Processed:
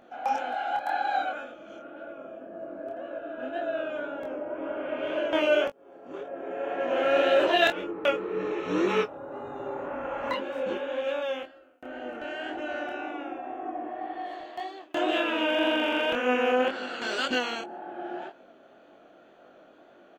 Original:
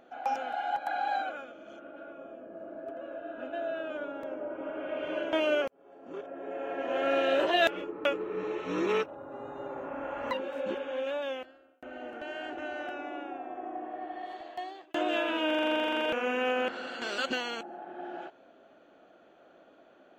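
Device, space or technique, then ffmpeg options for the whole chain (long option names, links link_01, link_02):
double-tracked vocal: -filter_complex "[0:a]asplit=2[link_01][link_02];[link_02]adelay=20,volume=-13.5dB[link_03];[link_01][link_03]amix=inputs=2:normalize=0,flanger=delay=20:depth=8:speed=1.9,volume=6.5dB"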